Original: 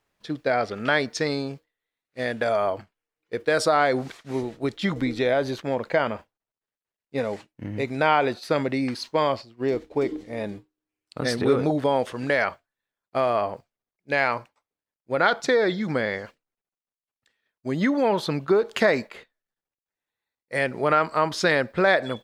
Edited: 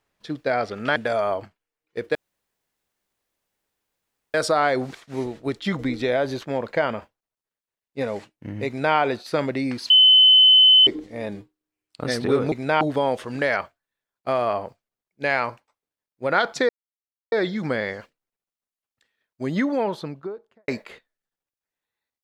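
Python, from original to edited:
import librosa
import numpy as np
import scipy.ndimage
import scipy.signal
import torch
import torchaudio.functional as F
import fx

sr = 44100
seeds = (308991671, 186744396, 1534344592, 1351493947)

y = fx.studio_fade_out(x, sr, start_s=17.71, length_s=1.22)
y = fx.edit(y, sr, fx.cut(start_s=0.96, length_s=1.36),
    fx.insert_room_tone(at_s=3.51, length_s=2.19),
    fx.duplicate(start_s=7.84, length_s=0.29, to_s=11.69),
    fx.bleep(start_s=9.07, length_s=0.97, hz=3040.0, db=-9.5),
    fx.insert_silence(at_s=15.57, length_s=0.63), tone=tone)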